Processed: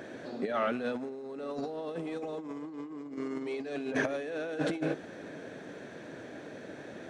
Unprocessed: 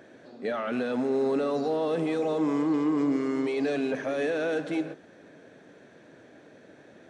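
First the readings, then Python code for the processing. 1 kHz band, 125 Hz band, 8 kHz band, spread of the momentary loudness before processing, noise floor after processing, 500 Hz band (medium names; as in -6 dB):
-4.5 dB, -4.0 dB, no reading, 7 LU, -46 dBFS, -7.0 dB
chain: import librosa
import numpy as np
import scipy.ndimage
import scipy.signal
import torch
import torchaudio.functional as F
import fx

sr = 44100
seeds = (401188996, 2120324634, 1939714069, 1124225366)

y = fx.over_compress(x, sr, threshold_db=-33.0, ratio=-0.5)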